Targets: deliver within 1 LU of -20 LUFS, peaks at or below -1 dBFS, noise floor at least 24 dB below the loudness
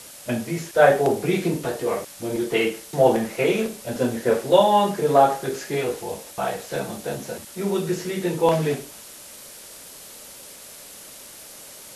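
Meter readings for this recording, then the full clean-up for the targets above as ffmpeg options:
noise floor -43 dBFS; noise floor target -47 dBFS; loudness -22.5 LUFS; peak level -2.5 dBFS; loudness target -20.0 LUFS
-> -af "afftdn=nr=6:nf=-43"
-af "volume=1.33,alimiter=limit=0.891:level=0:latency=1"

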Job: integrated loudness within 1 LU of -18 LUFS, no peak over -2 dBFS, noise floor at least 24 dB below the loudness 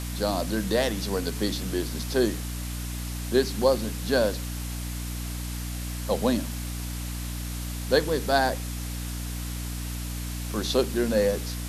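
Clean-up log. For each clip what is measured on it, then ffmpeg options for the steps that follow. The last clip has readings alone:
hum 60 Hz; highest harmonic 300 Hz; hum level -31 dBFS; noise floor -33 dBFS; noise floor target -52 dBFS; loudness -28.0 LUFS; peak level -8.0 dBFS; loudness target -18.0 LUFS
-> -af "bandreject=f=60:t=h:w=4,bandreject=f=120:t=h:w=4,bandreject=f=180:t=h:w=4,bandreject=f=240:t=h:w=4,bandreject=f=300:t=h:w=4"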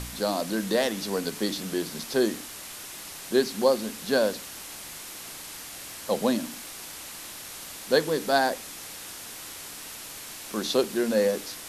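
hum not found; noise floor -41 dBFS; noise floor target -53 dBFS
-> -af "afftdn=nr=12:nf=-41"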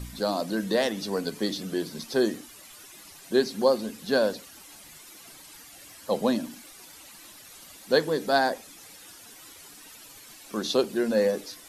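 noise floor -49 dBFS; noise floor target -51 dBFS
-> -af "afftdn=nr=6:nf=-49"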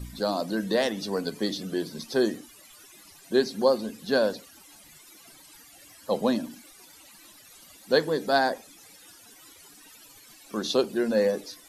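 noise floor -52 dBFS; loudness -27.0 LUFS; peak level -8.5 dBFS; loudness target -18.0 LUFS
-> -af "volume=2.82,alimiter=limit=0.794:level=0:latency=1"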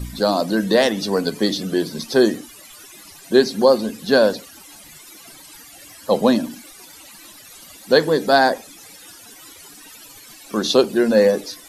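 loudness -18.0 LUFS; peak level -2.0 dBFS; noise floor -43 dBFS

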